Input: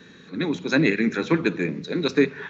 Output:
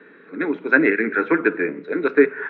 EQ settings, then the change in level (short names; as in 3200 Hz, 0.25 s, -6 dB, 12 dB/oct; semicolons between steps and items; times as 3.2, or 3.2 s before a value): dynamic EQ 1600 Hz, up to +7 dB, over -42 dBFS, Q 3.4; speaker cabinet 280–2500 Hz, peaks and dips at 300 Hz +7 dB, 430 Hz +8 dB, 640 Hz +5 dB, 960 Hz +3 dB, 1400 Hz +9 dB, 2100 Hz +5 dB; -2.0 dB